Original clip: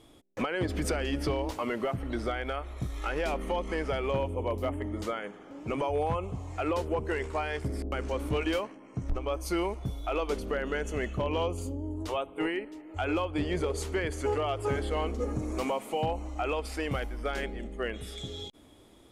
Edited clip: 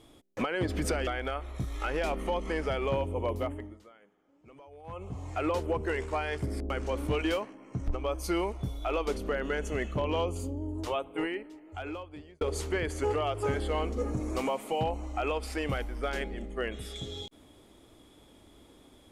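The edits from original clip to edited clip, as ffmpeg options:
-filter_complex "[0:a]asplit=5[s0][s1][s2][s3][s4];[s0]atrim=end=1.072[s5];[s1]atrim=start=2.288:end=5.01,asetpts=PTS-STARTPTS,afade=t=out:st=2.312:d=0.41:silence=0.0794328[s6];[s2]atrim=start=5.01:end=6.05,asetpts=PTS-STARTPTS,volume=0.0794[s7];[s3]atrim=start=6.05:end=13.63,asetpts=PTS-STARTPTS,afade=t=in:d=0.41:silence=0.0794328,afade=t=out:st=6.18:d=1.4[s8];[s4]atrim=start=13.63,asetpts=PTS-STARTPTS,afade=t=in:d=0.004:c=hsin[s9];[s6][s7][s8][s9]concat=n=4:v=0:a=1[s10];[s5][s10]acrossfade=d=0.004:c1=hsin:c2=hsin"

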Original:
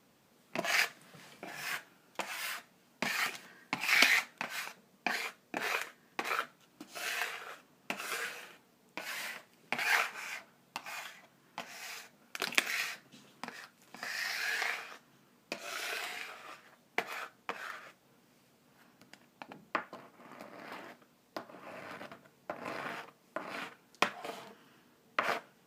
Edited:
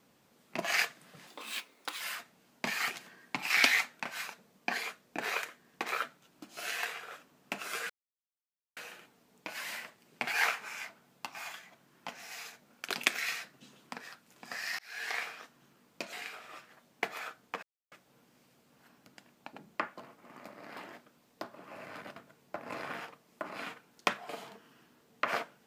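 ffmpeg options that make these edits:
-filter_complex "[0:a]asplit=8[s0][s1][s2][s3][s4][s5][s6][s7];[s0]atrim=end=1.274[s8];[s1]atrim=start=1.27:end=2.39,asetpts=PTS-STARTPTS,asetrate=67032,aresample=44100[s9];[s2]atrim=start=2.386:end=8.28,asetpts=PTS-STARTPTS,afade=t=out:st=5.89:d=0.004:c=hsin,apad=pad_dur=0.87[s10];[s3]atrim=start=8.28:end=14.3,asetpts=PTS-STARTPTS,afade=t=in:d=0.004:c=hsin,afade=t=out:st=6.016:d=0.004:c=hsin[s11];[s4]atrim=start=14.3:end=15.642,asetpts=PTS-STARTPTS,afade=t=in:d=0.41[s12];[s5]atrim=start=16.078:end=17.58,asetpts=PTS-STARTPTS,afade=t=out:st=1.498:d=0.004:c=hsin[s13];[s6]atrim=start=17.58:end=17.87,asetpts=PTS-STARTPTS,volume=0[s14];[s7]atrim=start=17.87,asetpts=PTS-STARTPTS,afade=t=in:d=0.004:c=hsin[s15];[s8][s9]acrossfade=d=0.004:c1=hsin:c2=hsin[s16];[s10][s11][s12]concat=n=3:v=0:a=1[s17];[s16][s17]acrossfade=d=0.004:c1=hsin:c2=hsin[s18];[s13][s14][s15]concat=n=3:v=0:a=1[s19];[s18][s19]acrossfade=d=0.004:c1=hsin:c2=hsin"

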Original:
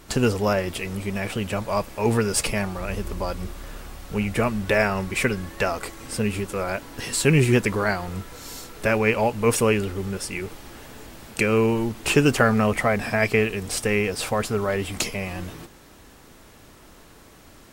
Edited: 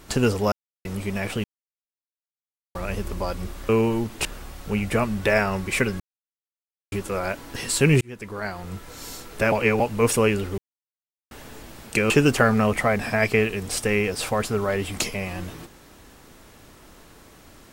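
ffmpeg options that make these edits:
-filter_complex "[0:a]asplit=15[s0][s1][s2][s3][s4][s5][s6][s7][s8][s9][s10][s11][s12][s13][s14];[s0]atrim=end=0.52,asetpts=PTS-STARTPTS,afade=t=out:st=0.516:d=0.004:c=hsin[s15];[s1]atrim=start=0.52:end=0.85,asetpts=PTS-STARTPTS,volume=0[s16];[s2]atrim=start=0.85:end=1.44,asetpts=PTS-STARTPTS,afade=t=in:d=0.004:c=hsin,afade=t=out:st=0.586:d=0.004:c=hsin[s17];[s3]atrim=start=1.44:end=2.75,asetpts=PTS-STARTPTS,volume=0[s18];[s4]atrim=start=2.75:end=3.692,asetpts=PTS-STARTPTS,afade=t=in:d=0.004:c=hsin[s19];[s5]atrim=start=11.538:end=12.102[s20];[s6]atrim=start=3.688:end=5.44,asetpts=PTS-STARTPTS,afade=t=out:st=1.748:d=0.004:c=hsin[s21];[s7]atrim=start=5.44:end=6.36,asetpts=PTS-STARTPTS,volume=0[s22];[s8]atrim=start=6.36:end=7.45,asetpts=PTS-STARTPTS,afade=t=in:d=0.004:c=hsin,afade=t=out:st=1.086:d=0.004:c=hsin[s23];[s9]atrim=start=7.45:end=8.962,asetpts=PTS-STARTPTS,afade=t=in:d=1[s24];[s10]atrim=start=8.958:end=9.242,asetpts=PTS-STARTPTS,areverse[s25];[s11]atrim=start=9.238:end=10.02,asetpts=PTS-STARTPTS,afade=t=out:st=0.778:d=0.004:c=hsin[s26];[s12]atrim=start=10.02:end=10.75,asetpts=PTS-STARTPTS,volume=0[s27];[s13]atrim=start=10.75:end=11.542,asetpts=PTS-STARTPTS,afade=t=in:d=0.004:c=hsin[s28];[s14]atrim=start=12.098[s29];[s15][s16][s17][s18][s19]concat=n=5:v=0:a=1[s30];[s30][s20]acrossfade=d=0.004:c1=hsin:c2=hsin[s31];[s21][s22][s23][s24]concat=n=4:v=0:a=1[s32];[s31][s32]acrossfade=d=0.004:c1=hsin:c2=hsin[s33];[s33][s25]acrossfade=d=0.004:c1=hsin:c2=hsin[s34];[s26][s27][s28]concat=n=3:v=0:a=1[s35];[s34][s35]acrossfade=d=0.004:c1=hsin:c2=hsin[s36];[s36][s29]acrossfade=d=0.004:c1=hsin:c2=hsin"

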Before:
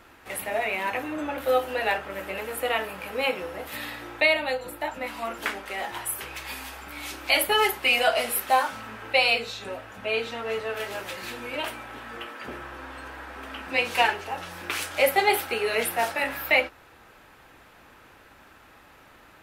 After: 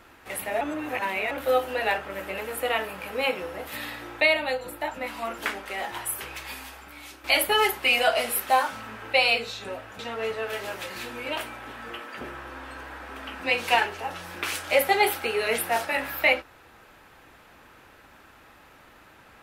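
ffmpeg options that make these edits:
-filter_complex "[0:a]asplit=5[s0][s1][s2][s3][s4];[s0]atrim=end=0.612[s5];[s1]atrim=start=0.608:end=1.312,asetpts=PTS-STARTPTS,areverse[s6];[s2]atrim=start=1.308:end=7.24,asetpts=PTS-STARTPTS,afade=t=out:st=4.972:d=0.96:silence=0.298538[s7];[s3]atrim=start=7.24:end=9.992,asetpts=PTS-STARTPTS,afade=t=in:d=0.004:c=hsin:silence=0.298538[s8];[s4]atrim=start=10.258[s9];[s5][s6]acrossfade=d=0.004:c1=hsin:c2=hsin[s10];[s7][s8]concat=n=2:v=0:a=1[s11];[s10][s11]acrossfade=d=0.004:c1=hsin:c2=hsin[s12];[s12][s9]acrossfade=d=0.004:c1=hsin:c2=hsin"

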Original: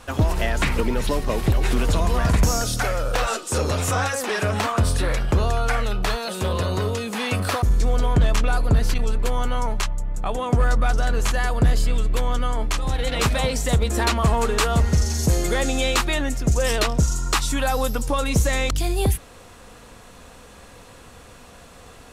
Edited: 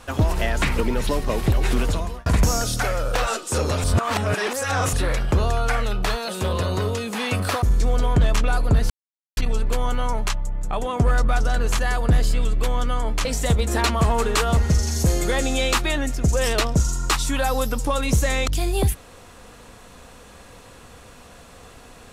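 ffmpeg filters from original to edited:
-filter_complex "[0:a]asplit=6[s0][s1][s2][s3][s4][s5];[s0]atrim=end=2.26,asetpts=PTS-STARTPTS,afade=t=out:st=1.8:d=0.46[s6];[s1]atrim=start=2.26:end=3.842,asetpts=PTS-STARTPTS,afade=t=in:d=0.004:c=hsin[s7];[s2]atrim=start=3.838:end=4.932,asetpts=PTS-STARTPTS,areverse[s8];[s3]atrim=start=4.928:end=8.9,asetpts=PTS-STARTPTS,afade=t=out:st=3.968:d=0.004:c=hsin,apad=pad_dur=0.47[s9];[s4]atrim=start=8.9:end=12.782,asetpts=PTS-STARTPTS,afade=t=in:d=0.004:c=hsin[s10];[s5]atrim=start=13.478[s11];[s6][s7]concat=n=2:v=0:a=1[s12];[s12][s8]acrossfade=d=0.004:c1=hsin:c2=hsin[s13];[s9][s10]concat=n=2:v=0:a=1[s14];[s13][s14]acrossfade=d=0.004:c1=hsin:c2=hsin[s15];[s15][s11]acrossfade=d=0.004:c1=hsin:c2=hsin"

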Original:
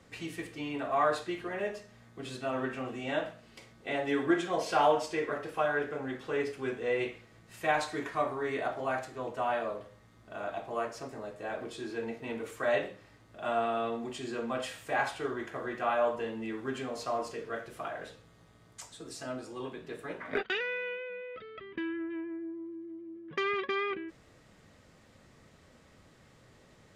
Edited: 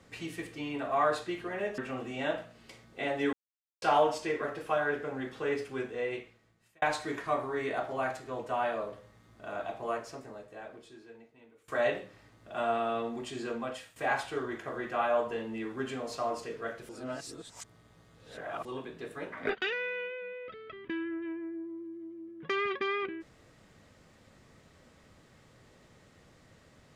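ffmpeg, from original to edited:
-filter_complex "[0:a]asplit=9[s0][s1][s2][s3][s4][s5][s6][s7][s8];[s0]atrim=end=1.782[s9];[s1]atrim=start=2.658:end=4.21,asetpts=PTS-STARTPTS,afade=t=out:st=1.548:d=0.004:c=hsin[s10];[s2]atrim=start=4.21:end=4.7,asetpts=PTS-STARTPTS,volume=0[s11];[s3]atrim=start=4.7:end=7.7,asetpts=PTS-STARTPTS,afade=t=in:d=0.004:c=hsin,afade=t=out:st=1.83:d=1.17[s12];[s4]atrim=start=7.7:end=12.56,asetpts=PTS-STARTPTS,afade=t=in:d=0.004:c=hsin,afade=t=out:st=3.08:d=1.78:c=qua:silence=0.0707946[s13];[s5]atrim=start=12.56:end=14.84,asetpts=PTS-STARTPTS,afade=t=in:d=0.004:c=hsin:silence=0.0707946,afade=t=out:st=1.83:d=0.45:silence=0.188365[s14];[s6]atrim=start=14.84:end=17.772,asetpts=PTS-STARTPTS,afade=t=in:d=0.004:c=hsin:silence=0.188365[s15];[s7]atrim=start=17.768:end=19.532,asetpts=PTS-STARTPTS,areverse[s16];[s8]atrim=start=19.528[s17];[s10][s11][s12][s13][s14][s15]concat=n=6:v=0:a=1[s18];[s9][s18]acrossfade=d=0.004:c1=hsin:c2=hsin[s19];[s19][s16]acrossfade=d=0.004:c1=hsin:c2=hsin[s20];[s20][s17]acrossfade=d=0.004:c1=hsin:c2=hsin"

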